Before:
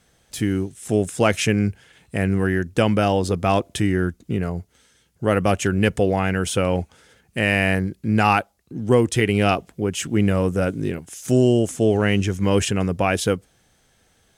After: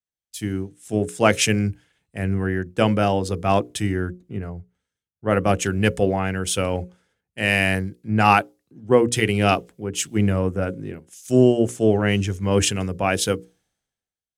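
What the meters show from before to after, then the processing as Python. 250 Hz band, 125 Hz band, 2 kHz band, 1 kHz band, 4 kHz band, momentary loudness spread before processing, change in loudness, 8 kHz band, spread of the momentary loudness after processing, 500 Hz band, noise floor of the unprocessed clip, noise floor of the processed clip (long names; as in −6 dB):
−1.5 dB, −1.5 dB, 0.0 dB, +1.0 dB, +1.5 dB, 8 LU, −0.5 dB, +2.5 dB, 14 LU, −0.5 dB, −62 dBFS, below −85 dBFS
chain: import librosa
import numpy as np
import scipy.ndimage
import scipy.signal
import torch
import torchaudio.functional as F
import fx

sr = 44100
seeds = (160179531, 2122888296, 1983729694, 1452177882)

y = fx.hum_notches(x, sr, base_hz=60, count=9)
y = fx.band_widen(y, sr, depth_pct=100)
y = y * 10.0 ** (-1.0 / 20.0)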